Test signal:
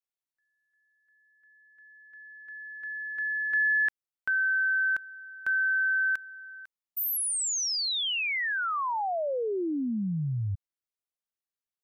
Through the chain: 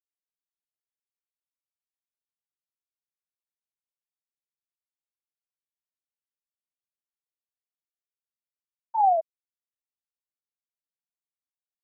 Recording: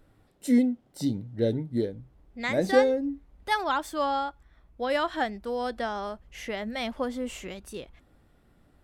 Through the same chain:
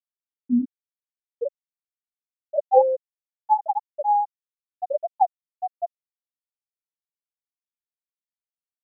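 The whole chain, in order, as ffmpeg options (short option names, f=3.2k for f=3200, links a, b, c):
-af "acrusher=bits=8:mix=0:aa=0.000001,lowpass=f=790:t=q:w=4.2,afftfilt=real='re*gte(hypot(re,im),1.12)':imag='im*gte(hypot(re,im),1.12)':win_size=1024:overlap=0.75"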